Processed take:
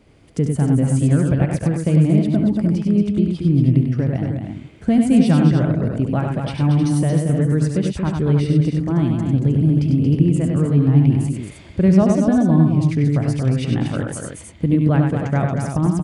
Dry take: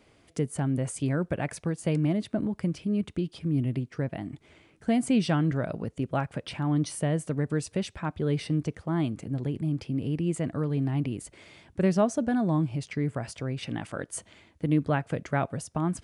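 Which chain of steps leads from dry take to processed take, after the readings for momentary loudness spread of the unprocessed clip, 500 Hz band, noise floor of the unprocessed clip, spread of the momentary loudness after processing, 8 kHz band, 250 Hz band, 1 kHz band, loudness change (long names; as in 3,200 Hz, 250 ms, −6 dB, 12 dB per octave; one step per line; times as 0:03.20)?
9 LU, +7.5 dB, −61 dBFS, 9 LU, +4.5 dB, +12.0 dB, +5.5 dB, +12.0 dB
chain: camcorder AGC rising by 5.1 dB per second
low-shelf EQ 320 Hz +11.5 dB
on a send: multi-tap delay 70/97/229/311 ms −10/−4.5/−6.5/−8 dB
on the sum: level +1 dB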